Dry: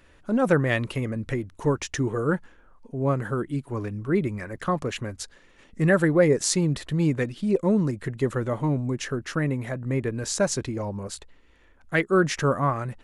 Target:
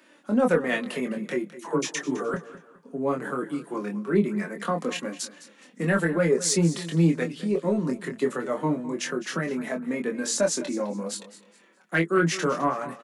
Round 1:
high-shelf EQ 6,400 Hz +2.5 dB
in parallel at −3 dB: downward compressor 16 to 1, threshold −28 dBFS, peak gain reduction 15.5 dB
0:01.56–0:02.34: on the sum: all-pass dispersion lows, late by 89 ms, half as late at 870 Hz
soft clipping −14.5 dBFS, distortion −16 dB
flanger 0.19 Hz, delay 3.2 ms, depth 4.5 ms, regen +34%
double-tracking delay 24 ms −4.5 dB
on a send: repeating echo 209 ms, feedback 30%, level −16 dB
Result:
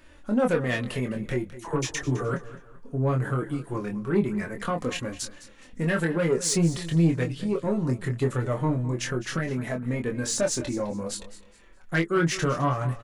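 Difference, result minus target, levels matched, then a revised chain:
soft clipping: distortion +12 dB; 125 Hz band +5.0 dB
Butterworth high-pass 160 Hz 72 dB per octave
high-shelf EQ 6,400 Hz +2.5 dB
in parallel at −3 dB: downward compressor 16 to 1, threshold −28 dBFS, peak gain reduction 15.5 dB
0:01.56–0:02.34: on the sum: all-pass dispersion lows, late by 89 ms, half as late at 870 Hz
soft clipping −6 dBFS, distortion −28 dB
flanger 0.19 Hz, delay 3.2 ms, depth 4.5 ms, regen +34%
double-tracking delay 24 ms −4.5 dB
on a send: repeating echo 209 ms, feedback 30%, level −16 dB

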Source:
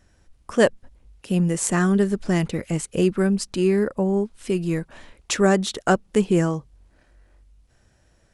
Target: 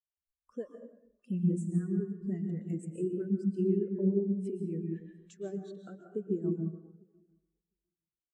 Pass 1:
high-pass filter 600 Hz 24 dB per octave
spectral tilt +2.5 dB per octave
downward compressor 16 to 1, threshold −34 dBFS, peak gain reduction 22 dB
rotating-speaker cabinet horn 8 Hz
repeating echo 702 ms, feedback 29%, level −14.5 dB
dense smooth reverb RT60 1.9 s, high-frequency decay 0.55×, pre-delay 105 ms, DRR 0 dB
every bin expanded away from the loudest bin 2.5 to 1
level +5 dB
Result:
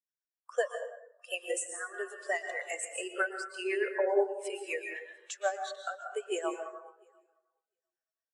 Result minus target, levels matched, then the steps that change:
500 Hz band +4.5 dB
remove: high-pass filter 600 Hz 24 dB per octave

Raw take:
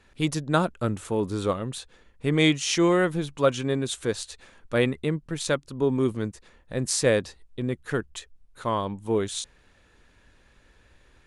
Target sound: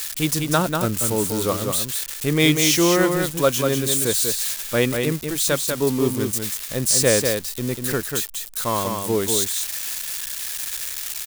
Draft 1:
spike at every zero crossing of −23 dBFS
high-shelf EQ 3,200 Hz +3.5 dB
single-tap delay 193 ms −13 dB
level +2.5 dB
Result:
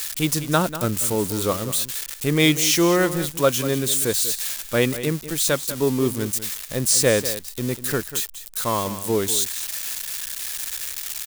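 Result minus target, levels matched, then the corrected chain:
echo-to-direct −8 dB
spike at every zero crossing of −23 dBFS
high-shelf EQ 3,200 Hz +3.5 dB
single-tap delay 193 ms −5 dB
level +2.5 dB

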